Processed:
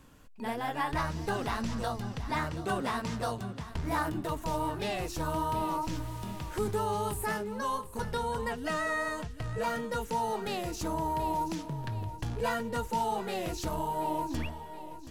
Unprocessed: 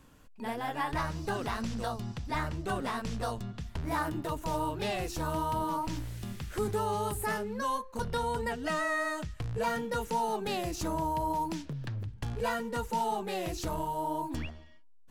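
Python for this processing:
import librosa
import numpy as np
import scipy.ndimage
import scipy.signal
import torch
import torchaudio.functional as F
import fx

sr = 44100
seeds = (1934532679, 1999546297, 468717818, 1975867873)

y = fx.highpass(x, sr, hz=86.0, slope=12, at=(2.33, 3.7))
y = fx.echo_feedback(y, sr, ms=727, feedback_pct=38, wet_db=-14.0)
y = fx.rider(y, sr, range_db=3, speed_s=2.0)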